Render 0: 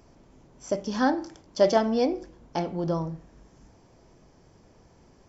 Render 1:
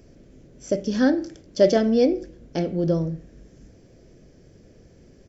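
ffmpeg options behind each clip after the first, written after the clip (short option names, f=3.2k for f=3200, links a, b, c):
-af "firequalizer=gain_entry='entry(540,0);entry(900,-19);entry(1600,-4)':delay=0.05:min_phase=1,volume=6dB"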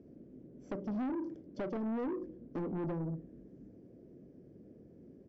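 -af "acompressor=threshold=-24dB:ratio=5,bandpass=f=270:t=q:w=1.3:csg=0,asoftclip=type=tanh:threshold=-33dB"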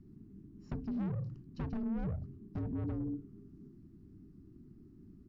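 -af "afreqshift=-450"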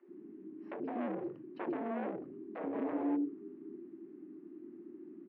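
-filter_complex "[0:a]asoftclip=type=hard:threshold=-38dB,highpass=f=310:w=0.5412,highpass=f=310:w=1.3066,equalizer=f=340:t=q:w=4:g=9,equalizer=f=540:t=q:w=4:g=4,equalizer=f=1.3k:t=q:w=4:g=-4,lowpass=f=2.4k:w=0.5412,lowpass=f=2.4k:w=1.3066,acrossover=split=440[a][b];[a]adelay=80[c];[c][b]amix=inputs=2:normalize=0,volume=10.5dB"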